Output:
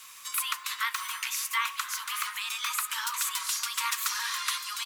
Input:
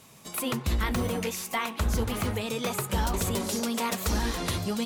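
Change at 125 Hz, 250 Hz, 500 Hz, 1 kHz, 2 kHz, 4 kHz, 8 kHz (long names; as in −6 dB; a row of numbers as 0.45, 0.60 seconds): below −40 dB, below −40 dB, below −40 dB, −0.5 dB, +3.5 dB, +3.5 dB, +3.5 dB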